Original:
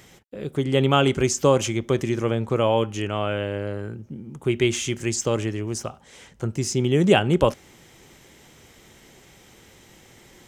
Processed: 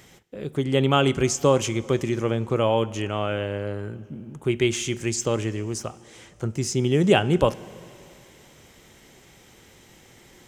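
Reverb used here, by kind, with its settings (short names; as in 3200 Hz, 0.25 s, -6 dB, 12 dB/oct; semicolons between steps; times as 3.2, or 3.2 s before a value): plate-style reverb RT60 2.8 s, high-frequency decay 0.95×, DRR 19 dB; gain -1 dB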